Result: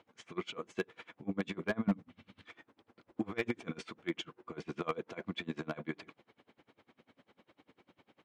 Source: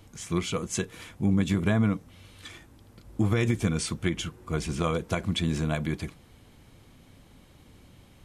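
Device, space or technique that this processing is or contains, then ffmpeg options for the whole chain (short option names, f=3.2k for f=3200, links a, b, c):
helicopter radio: -filter_complex "[0:a]asettb=1/sr,asplit=3[a][b][c];[a]atrim=end=1.874[d];[b]atrim=start=1.87:end=2.46,asetpts=PTS-STARTPTS,afade=t=in:d=0.004:c=qsin,afade=t=out:st=0.586:d=0.004:c=qsin,lowshelf=f=300:t=q:w=1.5:g=10.5[e];[c]atrim=start=2.456[f];[d][e]acrossfade=d=0.004:c1=hsin:c2=qsin[g];[g][f]acrossfade=d=0.004:c1=qsin:c2=hsin,highpass=320,lowpass=2.7k,aeval=exprs='val(0)*pow(10,-28*(0.5-0.5*cos(2*PI*10*n/s))/20)':c=same,asoftclip=type=hard:threshold=-24.5dB,volume=1dB"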